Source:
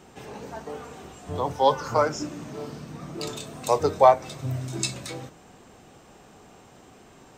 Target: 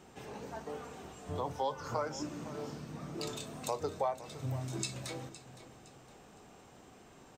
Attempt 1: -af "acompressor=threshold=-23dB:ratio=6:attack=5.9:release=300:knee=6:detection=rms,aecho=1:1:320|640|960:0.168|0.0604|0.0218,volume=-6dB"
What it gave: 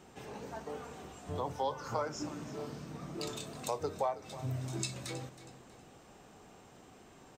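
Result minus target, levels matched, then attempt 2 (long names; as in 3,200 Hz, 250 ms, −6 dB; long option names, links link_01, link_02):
echo 193 ms early
-af "acompressor=threshold=-23dB:ratio=6:attack=5.9:release=300:knee=6:detection=rms,aecho=1:1:513|1026|1539:0.168|0.0604|0.0218,volume=-6dB"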